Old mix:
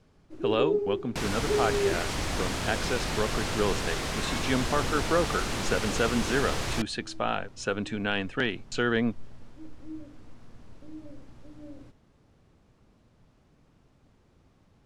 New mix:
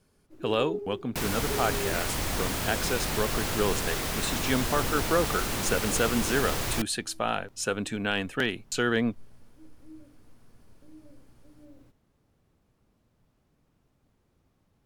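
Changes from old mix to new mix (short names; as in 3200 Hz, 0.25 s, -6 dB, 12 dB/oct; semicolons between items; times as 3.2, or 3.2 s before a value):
speech: remove air absorption 68 m; first sound -7.5 dB; master: remove LPF 7500 Hz 12 dB/oct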